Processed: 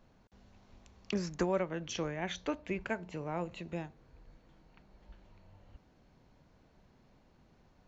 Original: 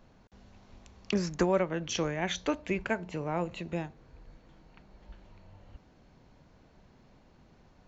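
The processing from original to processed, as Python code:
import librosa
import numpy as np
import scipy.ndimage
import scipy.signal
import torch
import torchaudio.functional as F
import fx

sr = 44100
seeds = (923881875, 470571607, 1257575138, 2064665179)

y = fx.high_shelf(x, sr, hz=6400.0, db=-7.5, at=(1.92, 2.82))
y = F.gain(torch.from_numpy(y), -5.0).numpy()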